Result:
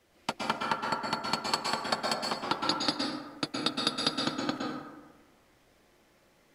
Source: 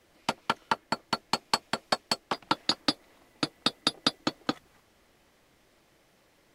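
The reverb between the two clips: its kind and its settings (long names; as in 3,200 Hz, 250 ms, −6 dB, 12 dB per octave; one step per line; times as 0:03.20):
dense smooth reverb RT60 1.2 s, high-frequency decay 0.45×, pre-delay 105 ms, DRR −1 dB
level −3.5 dB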